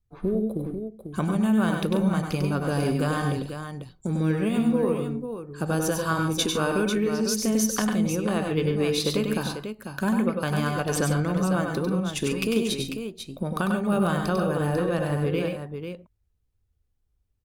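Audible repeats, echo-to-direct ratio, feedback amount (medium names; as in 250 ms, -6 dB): 3, -2.0 dB, no regular repeats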